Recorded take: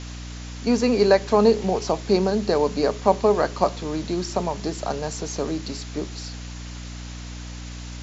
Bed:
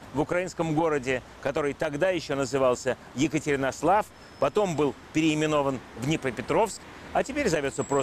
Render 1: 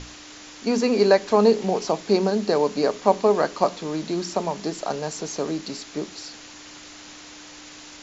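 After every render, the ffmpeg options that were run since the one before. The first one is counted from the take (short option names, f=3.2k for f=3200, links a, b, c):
-af "bandreject=f=60:t=h:w=6,bandreject=f=120:t=h:w=6,bandreject=f=180:t=h:w=6,bandreject=f=240:t=h:w=6"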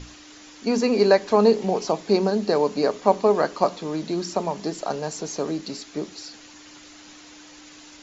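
-af "afftdn=nr=6:nf=-43"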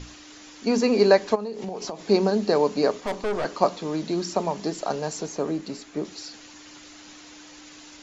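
-filter_complex "[0:a]asplit=3[a][b][c];[a]afade=t=out:st=1.34:d=0.02[d];[b]acompressor=threshold=-28dB:ratio=10:attack=3.2:release=140:knee=1:detection=peak,afade=t=in:st=1.34:d=0.02,afade=t=out:st=2.02:d=0.02[e];[c]afade=t=in:st=2.02:d=0.02[f];[d][e][f]amix=inputs=3:normalize=0,asplit=3[g][h][i];[g]afade=t=out:st=3:d=0.02[j];[h]aeval=exprs='(tanh(14.1*val(0)+0.5)-tanh(0.5))/14.1':c=same,afade=t=in:st=3:d=0.02,afade=t=out:st=3.44:d=0.02[k];[i]afade=t=in:st=3.44:d=0.02[l];[j][k][l]amix=inputs=3:normalize=0,asettb=1/sr,asplit=3[m][n][o];[m]atrim=end=5.264[p];[n]atrim=start=5.26:end=6.05,asetpts=PTS-STARTPTS,afade=t=in:d=0.004:c=qsin,afade=t=out:st=0.786:d=0.004:c=qsin,equalizer=f=4.8k:w=0.89:g=-7[q];[o]atrim=start=6.046[r];[p][q]acrossfade=d=0.004:c1=hsin:c2=qsin[s];[s][r]acrossfade=d=0.004:c1=qsin:c2=hsin"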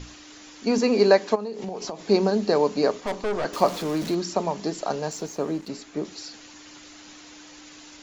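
-filter_complex "[0:a]asettb=1/sr,asplit=3[a][b][c];[a]atrim=end=0.784[d];[b]atrim=start=0.78:end=1.6,asetpts=PTS-STARTPTS,afade=t=in:d=0.004:c=qsin,afade=t=out:st=0.816:d=0.004:c=qsin,highpass=130[e];[c]atrim=start=1.596[f];[d][e]acrossfade=d=0.004:c1=hsin:c2=qsin[g];[g][f]acrossfade=d=0.004:c1=qsin:c2=hsin,asettb=1/sr,asplit=3[h][i][j];[h]atrim=end=3.534[k];[i]atrim=start=3.53:end=4.15,asetpts=PTS-STARTPTS,afade=t=in:d=0.004:c=qsin,afade=t=out:st=0.616:d=0.004:c=qsin,aeval=exprs='val(0)+0.5*0.0251*sgn(val(0))':c=same[l];[j]atrim=start=4.146[m];[k][l]acrossfade=d=0.004:c1=hsin:c2=qsin[n];[n][m]acrossfade=d=0.004:c1=qsin:c2=hsin,asettb=1/sr,asplit=3[o][p][q];[o]atrim=end=5.114[r];[p]atrim=start=5.11:end=5.69,asetpts=PTS-STARTPTS,afade=t=in:d=0.004:c=qsin,afade=t=out:st=0.576:d=0.004:c=qsin,aeval=exprs='sgn(val(0))*max(abs(val(0))-0.00299,0)':c=same[s];[q]atrim=start=5.686[t];[r][s]acrossfade=d=0.004:c1=hsin:c2=qsin[u];[u][t]acrossfade=d=0.004:c1=qsin:c2=hsin"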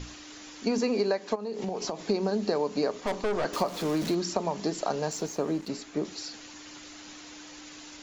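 -af "acompressor=threshold=-23dB:ratio=12"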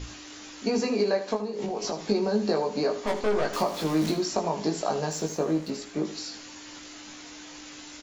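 -filter_complex "[0:a]asplit=2[a][b];[b]adelay=19,volume=-3dB[c];[a][c]amix=inputs=2:normalize=0,asplit=2[d][e];[e]aecho=0:1:77|154|231|308:0.251|0.0879|0.0308|0.0108[f];[d][f]amix=inputs=2:normalize=0"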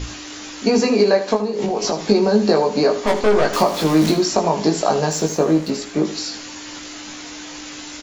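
-af "volume=10dB,alimiter=limit=-2dB:level=0:latency=1"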